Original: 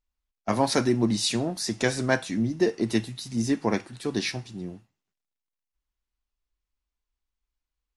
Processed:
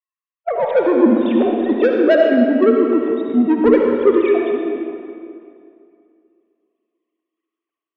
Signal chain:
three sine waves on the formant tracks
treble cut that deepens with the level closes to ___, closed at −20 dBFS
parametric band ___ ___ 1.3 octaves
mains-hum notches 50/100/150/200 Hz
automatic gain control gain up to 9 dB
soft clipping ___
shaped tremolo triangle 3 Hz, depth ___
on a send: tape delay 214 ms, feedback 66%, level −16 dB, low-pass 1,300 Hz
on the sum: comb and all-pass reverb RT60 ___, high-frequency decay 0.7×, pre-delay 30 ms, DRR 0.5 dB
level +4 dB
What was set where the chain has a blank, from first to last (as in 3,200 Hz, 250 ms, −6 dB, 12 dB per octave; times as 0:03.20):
1,900 Hz, 490 Hz, +13.5 dB, −10 dBFS, 60%, 2.4 s